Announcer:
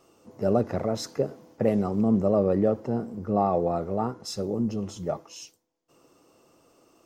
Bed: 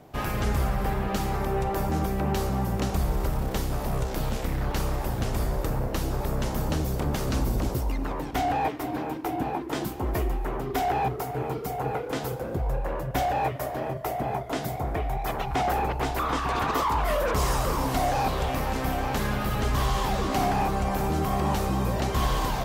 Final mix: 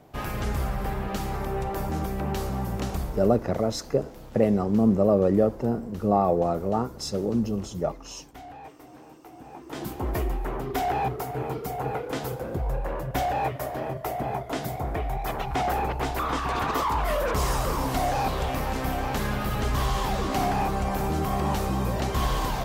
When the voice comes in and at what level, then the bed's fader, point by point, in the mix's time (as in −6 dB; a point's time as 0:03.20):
2.75 s, +2.0 dB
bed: 0:02.93 −2.5 dB
0:03.53 −17.5 dB
0:09.42 −17.5 dB
0:09.92 −0.5 dB